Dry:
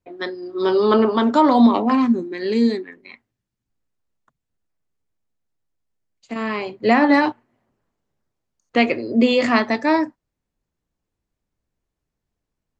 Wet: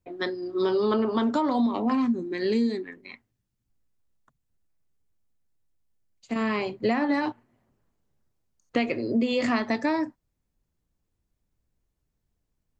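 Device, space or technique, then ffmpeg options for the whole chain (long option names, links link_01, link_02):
ASMR close-microphone chain: -af "lowshelf=frequency=190:gain=8,acompressor=threshold=-18dB:ratio=8,highshelf=frequency=6100:gain=5.5,volume=-3dB"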